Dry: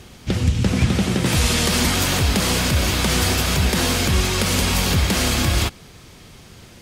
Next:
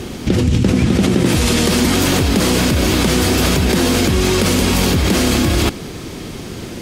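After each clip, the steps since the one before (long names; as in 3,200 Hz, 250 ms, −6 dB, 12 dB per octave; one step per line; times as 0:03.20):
parametric band 310 Hz +10 dB 1.4 octaves
in parallel at +2 dB: compressor whose output falls as the input rises −22 dBFS, ratio −0.5
on the sum: level −1.5 dB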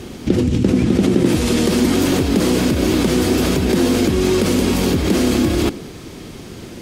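dynamic equaliser 320 Hz, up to +8 dB, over −29 dBFS, Q 0.87
level −6 dB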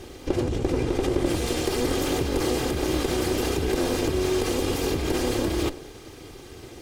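lower of the sound and its delayed copy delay 2.5 ms
level −7 dB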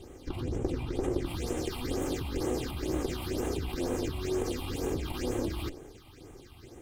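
all-pass phaser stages 6, 2.1 Hz, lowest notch 430–4,600 Hz
level −7 dB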